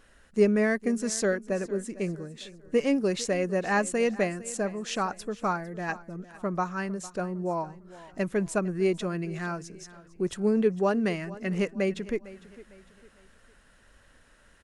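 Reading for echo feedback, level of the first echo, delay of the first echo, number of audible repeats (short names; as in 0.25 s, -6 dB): 38%, -18.5 dB, 0.454 s, 2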